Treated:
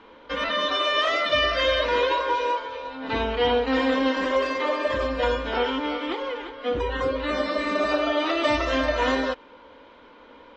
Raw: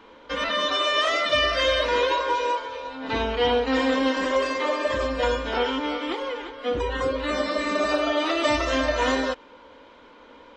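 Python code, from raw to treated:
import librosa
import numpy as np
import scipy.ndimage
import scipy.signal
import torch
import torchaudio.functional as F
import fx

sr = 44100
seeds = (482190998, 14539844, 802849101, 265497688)

y = scipy.signal.sosfilt(scipy.signal.butter(2, 4700.0, 'lowpass', fs=sr, output='sos'), x)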